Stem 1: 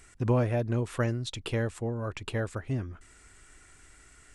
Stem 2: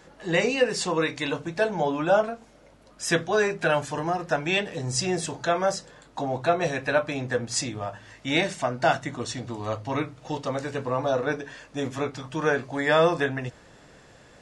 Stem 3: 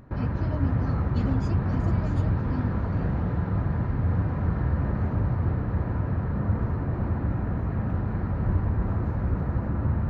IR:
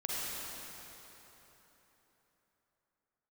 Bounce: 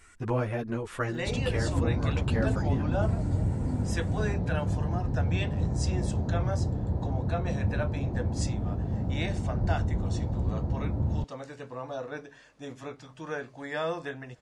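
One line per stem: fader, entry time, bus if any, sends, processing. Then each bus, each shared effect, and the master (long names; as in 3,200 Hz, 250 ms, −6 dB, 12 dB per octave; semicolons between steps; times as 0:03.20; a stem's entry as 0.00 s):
+0.5 dB, 0.00 s, no send, parametric band 1,400 Hz +4.5 dB 1.9 octaves; string-ensemble chorus
−11.5 dB, 0.85 s, no send, no processing
−3.0 dB, 1.15 s, no send, flat-topped bell 1,800 Hz −15 dB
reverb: not used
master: no processing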